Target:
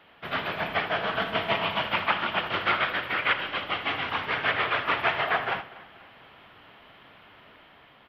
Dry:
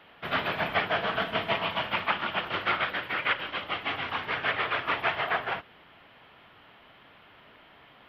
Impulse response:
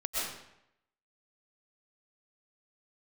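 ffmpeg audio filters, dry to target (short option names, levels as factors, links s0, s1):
-filter_complex "[0:a]asplit=2[s0][s1];[s1]aecho=0:1:81:0.211[s2];[s0][s2]amix=inputs=2:normalize=0,dynaudnorm=f=470:g=5:m=1.58,asplit=2[s3][s4];[s4]adelay=241,lowpass=f=3300:p=1,volume=0.106,asplit=2[s5][s6];[s6]adelay=241,lowpass=f=3300:p=1,volume=0.48,asplit=2[s7][s8];[s8]adelay=241,lowpass=f=3300:p=1,volume=0.48,asplit=2[s9][s10];[s10]adelay=241,lowpass=f=3300:p=1,volume=0.48[s11];[s5][s7][s9][s11]amix=inputs=4:normalize=0[s12];[s3][s12]amix=inputs=2:normalize=0,volume=0.841"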